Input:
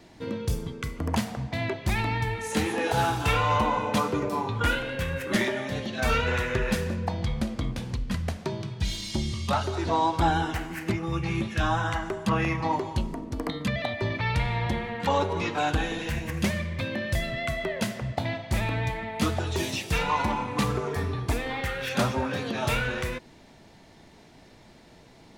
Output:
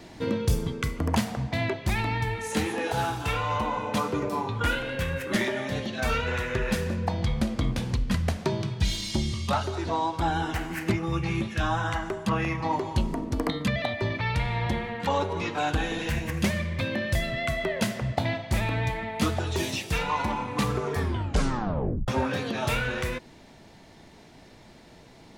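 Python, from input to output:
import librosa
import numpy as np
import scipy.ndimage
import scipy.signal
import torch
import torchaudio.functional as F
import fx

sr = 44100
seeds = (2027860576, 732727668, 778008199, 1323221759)

y = fx.edit(x, sr, fx.tape_stop(start_s=20.99, length_s=1.09), tone=tone)
y = fx.rider(y, sr, range_db=10, speed_s=0.5)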